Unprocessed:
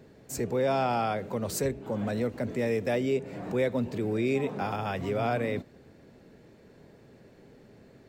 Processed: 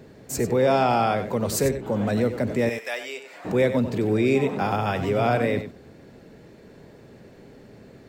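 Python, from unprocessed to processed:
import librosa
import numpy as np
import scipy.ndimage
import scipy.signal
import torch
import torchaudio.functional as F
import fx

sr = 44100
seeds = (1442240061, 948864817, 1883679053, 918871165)

p1 = fx.highpass(x, sr, hz=1100.0, slope=12, at=(2.69, 3.45))
p2 = p1 + fx.echo_single(p1, sr, ms=94, db=-10.5, dry=0)
y = p2 * librosa.db_to_amplitude(6.5)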